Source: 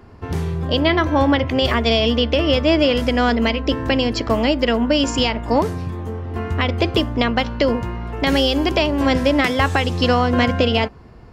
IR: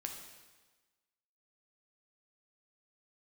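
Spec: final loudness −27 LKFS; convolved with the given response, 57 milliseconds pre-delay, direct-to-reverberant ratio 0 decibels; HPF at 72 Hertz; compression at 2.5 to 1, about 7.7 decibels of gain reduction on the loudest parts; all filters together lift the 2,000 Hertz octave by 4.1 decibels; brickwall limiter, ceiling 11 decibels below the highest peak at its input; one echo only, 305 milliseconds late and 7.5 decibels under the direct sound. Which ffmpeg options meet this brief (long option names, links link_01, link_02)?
-filter_complex "[0:a]highpass=72,equalizer=frequency=2000:width_type=o:gain=5,acompressor=threshold=-23dB:ratio=2.5,alimiter=limit=-18.5dB:level=0:latency=1,aecho=1:1:305:0.422,asplit=2[link_01][link_02];[1:a]atrim=start_sample=2205,adelay=57[link_03];[link_02][link_03]afir=irnorm=-1:irlink=0,volume=1.5dB[link_04];[link_01][link_04]amix=inputs=2:normalize=0,volume=-3dB"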